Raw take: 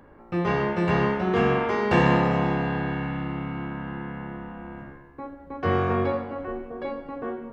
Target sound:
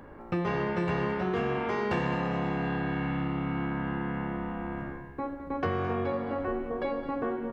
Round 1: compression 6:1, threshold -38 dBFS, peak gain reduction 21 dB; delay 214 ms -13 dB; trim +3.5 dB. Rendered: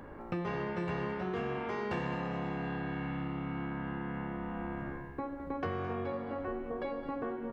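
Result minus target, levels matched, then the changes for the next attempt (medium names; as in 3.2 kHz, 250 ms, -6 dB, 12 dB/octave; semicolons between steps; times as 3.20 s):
compression: peak gain reduction +6 dB
change: compression 6:1, threshold -30.5 dBFS, peak gain reduction 14.5 dB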